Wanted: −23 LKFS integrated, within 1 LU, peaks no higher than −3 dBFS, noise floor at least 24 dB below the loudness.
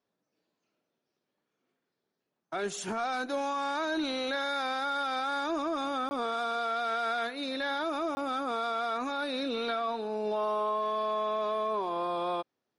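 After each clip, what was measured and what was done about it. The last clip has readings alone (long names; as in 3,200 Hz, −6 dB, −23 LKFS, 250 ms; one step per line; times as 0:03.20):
number of dropouts 2; longest dropout 20 ms; integrated loudness −32.0 LKFS; sample peak −22.5 dBFS; target loudness −23.0 LKFS
→ repair the gap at 0:06.09/0:08.15, 20 ms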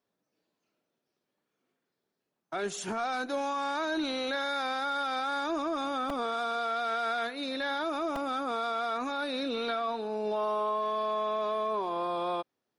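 number of dropouts 0; integrated loudness −32.0 LKFS; sample peak −22.5 dBFS; target loudness −23.0 LKFS
→ level +9 dB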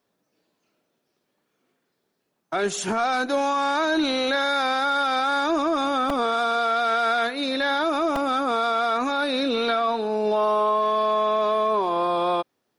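integrated loudness −23.0 LKFS; sample peak −13.5 dBFS; background noise floor −75 dBFS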